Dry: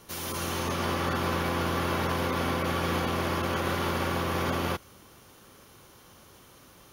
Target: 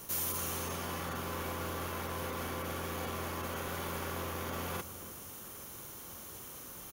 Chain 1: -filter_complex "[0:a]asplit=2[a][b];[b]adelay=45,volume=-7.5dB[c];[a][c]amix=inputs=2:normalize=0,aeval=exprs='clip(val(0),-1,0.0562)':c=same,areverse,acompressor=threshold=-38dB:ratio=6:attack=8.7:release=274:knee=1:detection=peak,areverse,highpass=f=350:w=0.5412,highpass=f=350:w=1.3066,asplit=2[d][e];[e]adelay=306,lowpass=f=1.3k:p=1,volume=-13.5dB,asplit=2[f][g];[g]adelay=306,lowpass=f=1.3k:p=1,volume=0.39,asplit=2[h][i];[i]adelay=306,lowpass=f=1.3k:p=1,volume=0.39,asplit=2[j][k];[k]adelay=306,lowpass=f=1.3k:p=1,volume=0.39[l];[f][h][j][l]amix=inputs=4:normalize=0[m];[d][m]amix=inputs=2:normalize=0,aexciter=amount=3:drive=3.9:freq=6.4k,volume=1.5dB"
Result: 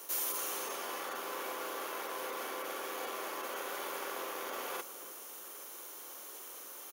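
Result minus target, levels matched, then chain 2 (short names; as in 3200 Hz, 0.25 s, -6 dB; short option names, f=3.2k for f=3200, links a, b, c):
250 Hz band -7.0 dB
-filter_complex "[0:a]asplit=2[a][b];[b]adelay=45,volume=-7.5dB[c];[a][c]amix=inputs=2:normalize=0,aeval=exprs='clip(val(0),-1,0.0562)':c=same,areverse,acompressor=threshold=-38dB:ratio=6:attack=8.7:release=274:knee=1:detection=peak,areverse,asplit=2[d][e];[e]adelay=306,lowpass=f=1.3k:p=1,volume=-13.5dB,asplit=2[f][g];[g]adelay=306,lowpass=f=1.3k:p=1,volume=0.39,asplit=2[h][i];[i]adelay=306,lowpass=f=1.3k:p=1,volume=0.39,asplit=2[j][k];[k]adelay=306,lowpass=f=1.3k:p=1,volume=0.39[l];[f][h][j][l]amix=inputs=4:normalize=0[m];[d][m]amix=inputs=2:normalize=0,aexciter=amount=3:drive=3.9:freq=6.4k,volume=1.5dB"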